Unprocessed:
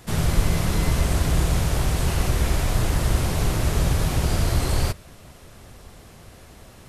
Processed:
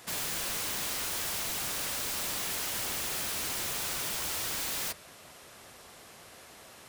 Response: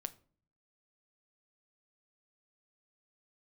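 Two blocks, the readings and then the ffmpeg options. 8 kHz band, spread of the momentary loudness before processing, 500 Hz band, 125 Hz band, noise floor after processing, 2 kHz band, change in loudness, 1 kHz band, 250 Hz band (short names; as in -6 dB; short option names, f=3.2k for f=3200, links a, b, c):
-0.5 dB, 2 LU, -14.0 dB, -28.5 dB, -52 dBFS, -5.0 dB, -8.0 dB, -9.5 dB, -19.5 dB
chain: -af "highpass=f=740:p=1,aeval=exprs='(mod(28.2*val(0)+1,2)-1)/28.2':c=same"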